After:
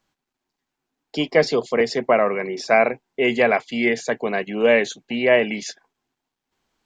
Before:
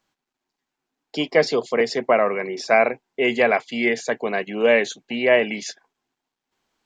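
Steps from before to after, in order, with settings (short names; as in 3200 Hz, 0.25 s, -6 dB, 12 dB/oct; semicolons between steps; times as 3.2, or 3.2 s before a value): low shelf 150 Hz +7.5 dB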